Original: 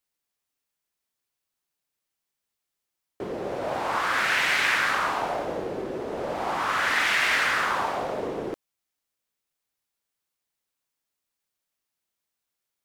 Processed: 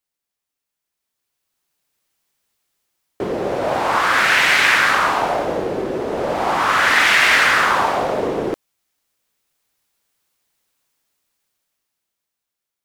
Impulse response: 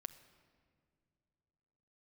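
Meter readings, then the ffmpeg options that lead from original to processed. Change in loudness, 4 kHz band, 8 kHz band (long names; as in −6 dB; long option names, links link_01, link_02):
+9.0 dB, +9.0 dB, +9.0 dB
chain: -af "dynaudnorm=framelen=240:gausssize=13:maxgain=13dB"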